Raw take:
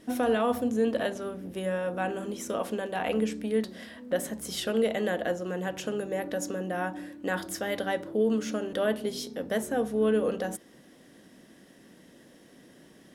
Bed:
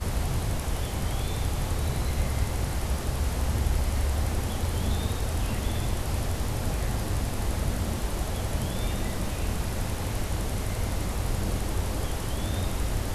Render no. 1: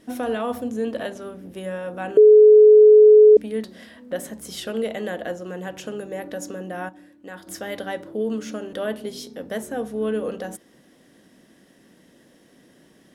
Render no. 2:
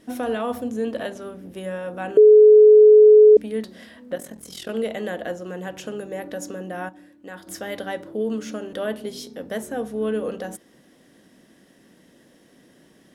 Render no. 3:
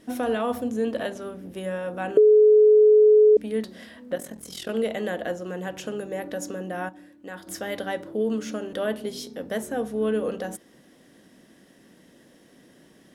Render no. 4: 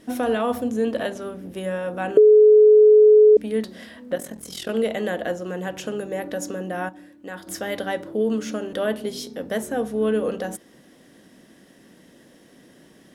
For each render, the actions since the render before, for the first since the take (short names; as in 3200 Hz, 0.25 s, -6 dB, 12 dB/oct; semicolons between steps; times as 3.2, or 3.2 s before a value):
2.17–3.37 bleep 426 Hz -6.5 dBFS; 6.89–7.47 gain -8.5 dB
4.15–4.69 AM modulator 42 Hz, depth 65%
compressor, threshold -13 dBFS, peak gain reduction 5 dB
gain +3 dB